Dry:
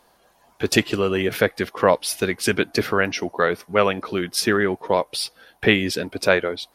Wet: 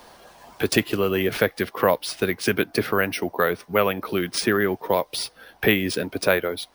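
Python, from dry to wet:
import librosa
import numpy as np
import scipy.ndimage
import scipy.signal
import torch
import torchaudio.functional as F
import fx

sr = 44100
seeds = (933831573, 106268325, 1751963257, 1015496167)

y = fx.high_shelf(x, sr, hz=9700.0, db=-11.0, at=(1.64, 4.1))
y = np.repeat(y[::3], 3)[:len(y)]
y = fx.band_squash(y, sr, depth_pct=40)
y = y * librosa.db_to_amplitude(-1.5)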